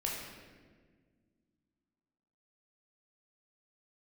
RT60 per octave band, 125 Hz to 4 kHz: 2.6, 2.9, 1.9, 1.3, 1.4, 1.0 seconds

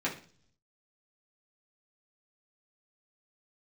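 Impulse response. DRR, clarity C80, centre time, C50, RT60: −6.5 dB, 15.5 dB, 20 ms, 10.0 dB, 0.45 s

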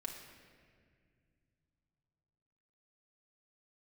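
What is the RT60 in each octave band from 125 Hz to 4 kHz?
4.3, 3.3, 2.4, 1.7, 2.1, 1.4 seconds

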